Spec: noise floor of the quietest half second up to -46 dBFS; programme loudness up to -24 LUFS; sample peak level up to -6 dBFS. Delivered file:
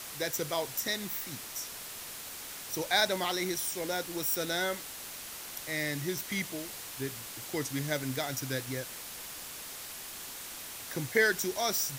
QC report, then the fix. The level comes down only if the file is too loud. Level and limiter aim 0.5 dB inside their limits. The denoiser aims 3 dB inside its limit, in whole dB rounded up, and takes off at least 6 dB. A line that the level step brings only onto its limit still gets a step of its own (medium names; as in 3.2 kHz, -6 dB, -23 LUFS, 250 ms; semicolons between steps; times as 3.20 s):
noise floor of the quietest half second -43 dBFS: fail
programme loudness -33.5 LUFS: pass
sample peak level -13.0 dBFS: pass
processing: noise reduction 6 dB, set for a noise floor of -43 dBFS